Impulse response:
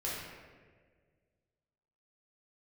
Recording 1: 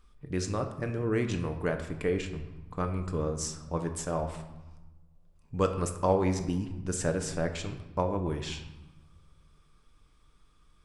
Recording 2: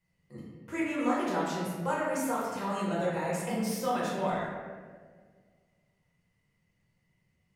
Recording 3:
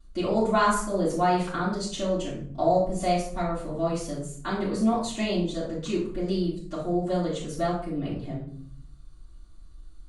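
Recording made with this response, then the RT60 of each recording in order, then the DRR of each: 2; 1.1, 1.7, 0.55 seconds; 5.0, −7.5, −12.0 decibels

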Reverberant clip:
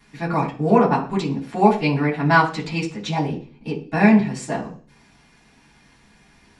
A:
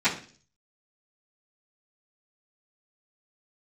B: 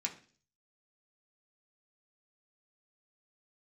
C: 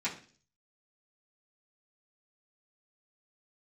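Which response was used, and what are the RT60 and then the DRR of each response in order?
A; 0.45, 0.45, 0.45 seconds; −19.0, −1.5, −10.5 decibels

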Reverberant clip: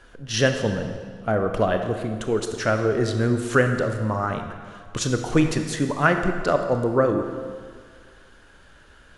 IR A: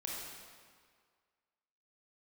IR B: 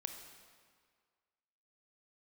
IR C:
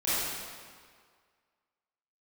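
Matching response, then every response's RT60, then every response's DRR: B; 1.9, 1.9, 1.9 seconds; −3.5, 5.5, −13.0 decibels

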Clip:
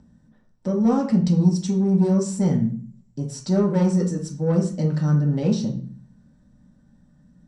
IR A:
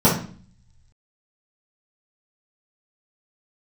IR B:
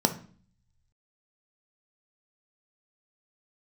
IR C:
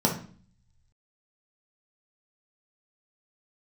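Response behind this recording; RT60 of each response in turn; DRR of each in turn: C; 0.45, 0.45, 0.45 seconds; −11.0, 6.0, −1.5 decibels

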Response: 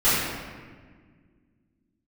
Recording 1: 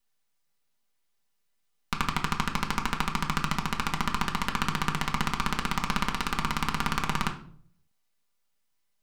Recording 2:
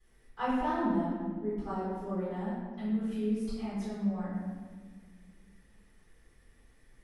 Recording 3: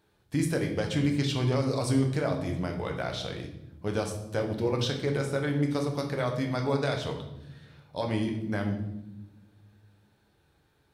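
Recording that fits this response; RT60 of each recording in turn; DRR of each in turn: 2; 0.55 s, 1.6 s, non-exponential decay; 0.5, −13.0, 2.5 decibels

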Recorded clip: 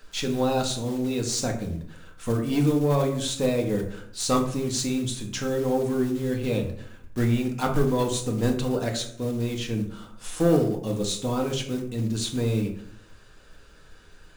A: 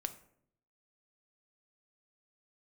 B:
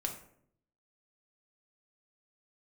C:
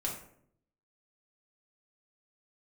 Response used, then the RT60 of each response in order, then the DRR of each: B; 0.65, 0.65, 0.65 seconds; 8.5, 2.0, −2.5 decibels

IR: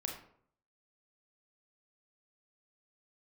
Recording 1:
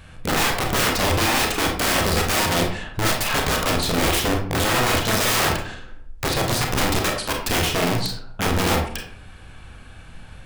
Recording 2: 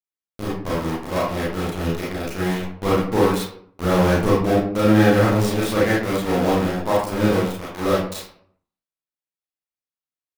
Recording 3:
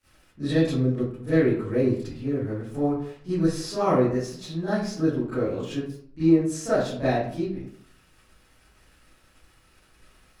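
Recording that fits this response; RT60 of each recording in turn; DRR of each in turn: 1; 0.60, 0.60, 0.60 seconds; 1.0, −7.0, −16.5 decibels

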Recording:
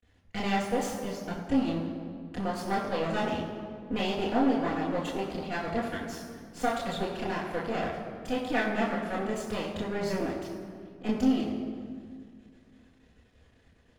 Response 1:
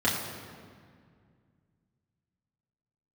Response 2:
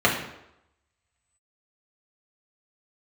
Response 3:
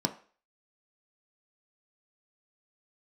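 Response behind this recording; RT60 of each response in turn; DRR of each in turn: 1; 2.0, 0.85, 0.40 seconds; −7.5, −3.5, 4.5 decibels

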